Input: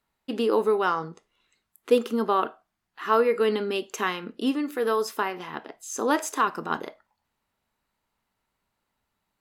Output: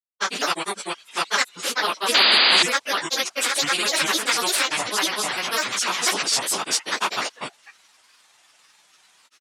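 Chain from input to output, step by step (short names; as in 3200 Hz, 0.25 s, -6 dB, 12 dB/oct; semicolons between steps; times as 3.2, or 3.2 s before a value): phase scrambler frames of 0.1 s; grains, grains 20/s, spray 0.688 s, pitch spread up and down by 7 st; painted sound noise, 2.14–2.63, 210–4900 Hz -22 dBFS; weighting filter ITU-R 468; spectral compressor 2:1; gain -2 dB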